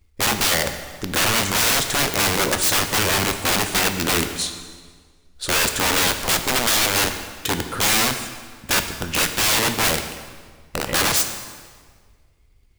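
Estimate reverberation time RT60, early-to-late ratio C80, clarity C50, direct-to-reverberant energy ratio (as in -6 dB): 1.7 s, 10.0 dB, 8.5 dB, 7.0 dB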